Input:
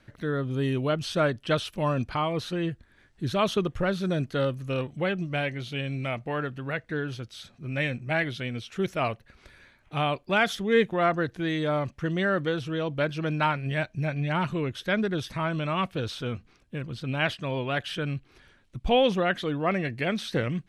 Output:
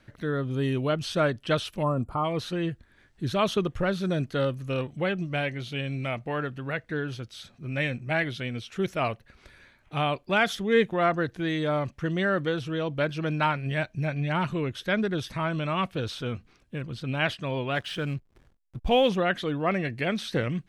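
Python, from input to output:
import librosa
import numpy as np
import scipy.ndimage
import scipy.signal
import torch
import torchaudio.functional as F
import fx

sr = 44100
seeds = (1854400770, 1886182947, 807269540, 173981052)

y = fx.spec_box(x, sr, start_s=1.83, length_s=0.42, low_hz=1400.0, high_hz=6900.0, gain_db=-18)
y = fx.backlash(y, sr, play_db=-46.5, at=(17.75, 19.09))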